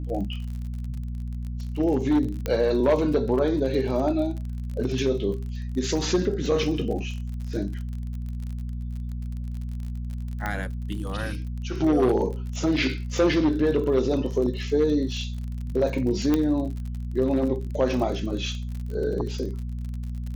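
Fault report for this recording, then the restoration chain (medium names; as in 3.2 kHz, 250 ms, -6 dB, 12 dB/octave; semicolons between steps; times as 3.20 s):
crackle 42 per s -33 dBFS
hum 60 Hz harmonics 4 -31 dBFS
2.46 s: pop -13 dBFS
10.46 s: pop -15 dBFS
16.34 s: pop -10 dBFS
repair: de-click; de-hum 60 Hz, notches 4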